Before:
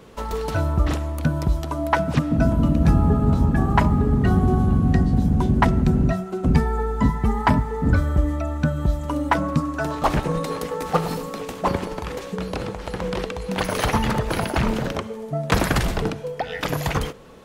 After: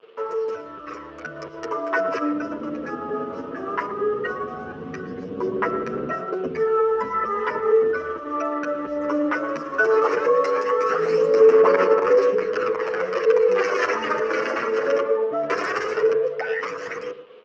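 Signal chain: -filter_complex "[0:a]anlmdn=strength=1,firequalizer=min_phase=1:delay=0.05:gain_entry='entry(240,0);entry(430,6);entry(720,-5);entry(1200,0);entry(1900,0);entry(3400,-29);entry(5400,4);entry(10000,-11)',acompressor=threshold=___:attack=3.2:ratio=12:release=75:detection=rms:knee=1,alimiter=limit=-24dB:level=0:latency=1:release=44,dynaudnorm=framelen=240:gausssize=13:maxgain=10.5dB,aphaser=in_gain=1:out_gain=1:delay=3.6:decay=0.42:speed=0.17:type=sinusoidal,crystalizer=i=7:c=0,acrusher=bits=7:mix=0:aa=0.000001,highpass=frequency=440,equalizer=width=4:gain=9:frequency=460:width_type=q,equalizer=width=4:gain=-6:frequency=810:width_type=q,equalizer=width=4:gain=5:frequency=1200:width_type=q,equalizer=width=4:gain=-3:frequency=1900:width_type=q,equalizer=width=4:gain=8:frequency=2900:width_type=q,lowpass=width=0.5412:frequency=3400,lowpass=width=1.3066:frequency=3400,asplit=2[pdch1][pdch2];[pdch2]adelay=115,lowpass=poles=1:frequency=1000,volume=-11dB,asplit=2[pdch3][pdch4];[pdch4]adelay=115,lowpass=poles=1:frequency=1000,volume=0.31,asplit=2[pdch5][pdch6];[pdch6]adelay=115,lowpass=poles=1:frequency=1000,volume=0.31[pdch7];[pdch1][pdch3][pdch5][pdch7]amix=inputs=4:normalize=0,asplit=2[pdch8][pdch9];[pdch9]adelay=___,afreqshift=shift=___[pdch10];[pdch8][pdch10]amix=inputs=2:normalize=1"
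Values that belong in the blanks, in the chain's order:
-21dB, 8.9, 0.61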